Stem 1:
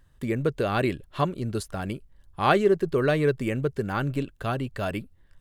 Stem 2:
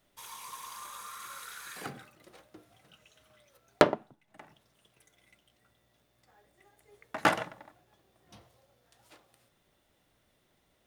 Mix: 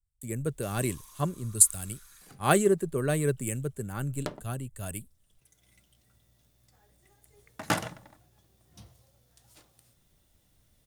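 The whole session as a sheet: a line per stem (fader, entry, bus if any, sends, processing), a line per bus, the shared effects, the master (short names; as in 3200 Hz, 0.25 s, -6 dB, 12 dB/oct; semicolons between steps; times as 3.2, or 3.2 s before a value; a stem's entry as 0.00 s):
-8.5 dB, 0.00 s, no send, resonant high shelf 6500 Hz +8 dB, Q 3; three-band expander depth 100%
-4.5 dB, 0.45 s, no send, low shelf 120 Hz +10.5 dB; auto duck -13 dB, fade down 1.30 s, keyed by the first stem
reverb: off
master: tone controls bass +7 dB, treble +12 dB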